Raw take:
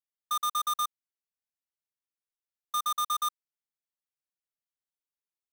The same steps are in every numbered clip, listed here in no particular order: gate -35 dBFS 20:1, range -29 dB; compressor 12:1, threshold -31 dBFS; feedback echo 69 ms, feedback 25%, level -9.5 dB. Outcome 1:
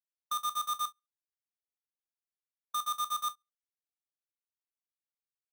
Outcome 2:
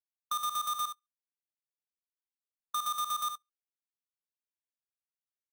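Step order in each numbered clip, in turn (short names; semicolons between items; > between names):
compressor > feedback echo > gate; feedback echo > gate > compressor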